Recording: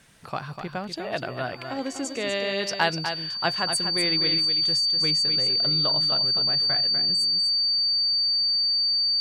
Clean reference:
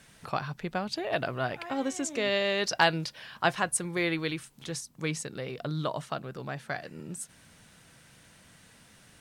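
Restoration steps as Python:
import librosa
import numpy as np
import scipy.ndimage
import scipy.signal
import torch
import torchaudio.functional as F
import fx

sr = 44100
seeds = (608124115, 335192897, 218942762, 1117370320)

y = fx.notch(x, sr, hz=4600.0, q=30.0)
y = fx.fix_echo_inverse(y, sr, delay_ms=247, level_db=-7.5)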